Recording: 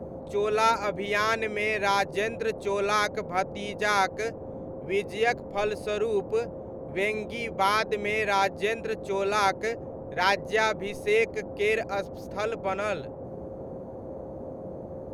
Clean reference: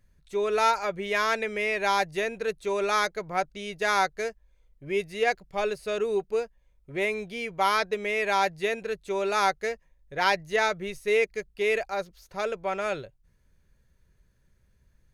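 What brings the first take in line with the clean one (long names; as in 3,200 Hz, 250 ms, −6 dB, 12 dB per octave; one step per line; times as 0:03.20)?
notch filter 530 Hz, Q 30
noise reduction from a noise print 24 dB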